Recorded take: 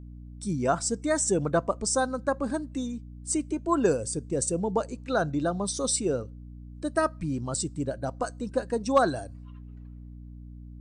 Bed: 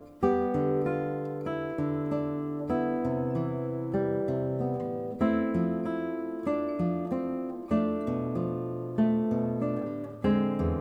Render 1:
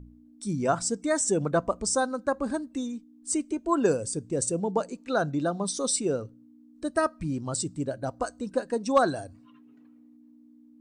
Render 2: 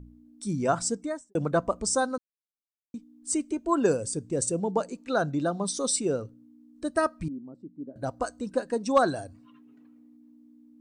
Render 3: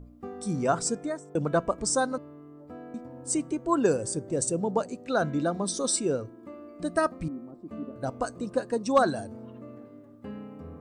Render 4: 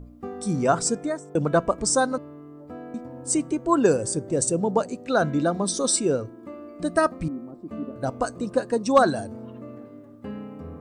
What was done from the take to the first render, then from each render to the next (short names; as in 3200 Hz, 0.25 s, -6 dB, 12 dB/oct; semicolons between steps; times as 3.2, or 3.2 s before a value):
de-hum 60 Hz, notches 3
0.87–1.35 studio fade out; 2.18–2.94 mute; 7.28–7.96 ladder band-pass 280 Hz, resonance 50%
add bed -15 dB
gain +4.5 dB